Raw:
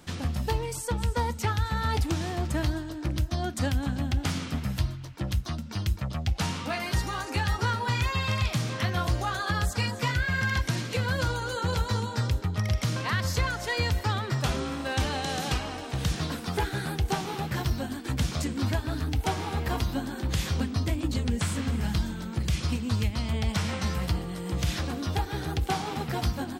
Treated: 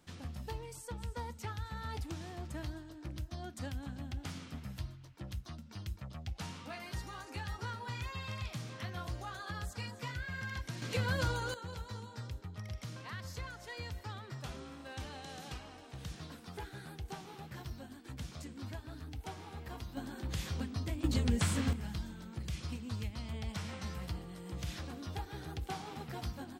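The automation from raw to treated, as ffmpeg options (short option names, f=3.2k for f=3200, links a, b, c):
-af "asetnsamples=n=441:p=0,asendcmd='10.82 volume volume -5.5dB;11.54 volume volume -16.5dB;19.97 volume volume -10dB;21.04 volume volume -3dB;21.73 volume volume -12.5dB',volume=-14dB"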